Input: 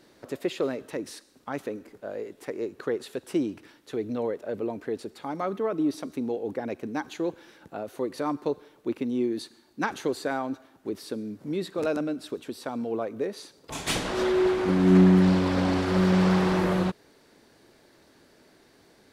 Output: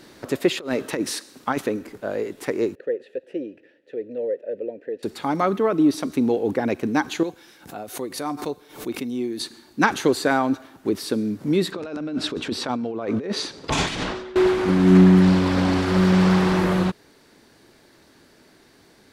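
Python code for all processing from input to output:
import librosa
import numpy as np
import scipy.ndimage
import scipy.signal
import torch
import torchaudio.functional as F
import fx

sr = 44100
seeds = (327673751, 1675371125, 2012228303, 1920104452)

y = fx.chain(x, sr, fx.highpass(hz=160.0, slope=6),
    fx.over_compress(threshold_db=-33.0, ratio=-0.5), at=(0.57, 1.61))
y = fx.chain(y, sr, fx.vowel_filter(vowel='e'),
    fx.tilt_shelf(db=5.5, hz=680.0), at=(2.75, 5.03))
y = fx.chain(y, sr, fx.high_shelf(hz=4700.0, db=9.5),
    fx.comb_fb(f0_hz=740.0, decay_s=0.15, harmonics='odd', damping=0.0, mix_pct=70),
    fx.pre_swell(db_per_s=130.0), at=(7.23, 9.4))
y = fx.chain(y, sr, fx.lowpass(hz=5500.0, slope=12),
    fx.over_compress(threshold_db=-37.0, ratio=-1.0), at=(11.72, 14.36))
y = fx.peak_eq(y, sr, hz=560.0, db=-3.5, octaves=1.1)
y = fx.rider(y, sr, range_db=3, speed_s=0.5)
y = y * librosa.db_to_amplitude(8.0)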